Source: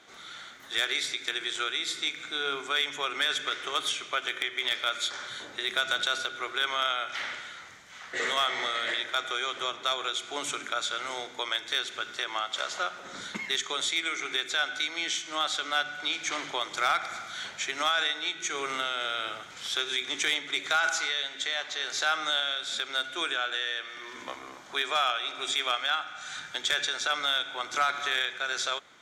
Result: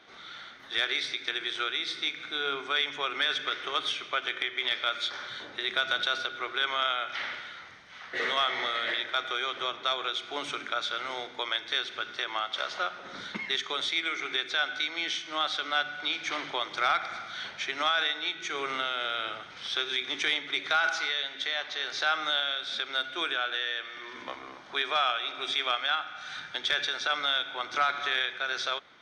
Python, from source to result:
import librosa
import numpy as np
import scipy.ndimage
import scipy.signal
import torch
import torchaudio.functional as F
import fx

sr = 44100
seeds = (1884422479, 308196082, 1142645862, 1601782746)

y = scipy.signal.savgol_filter(x, 15, 4, mode='constant')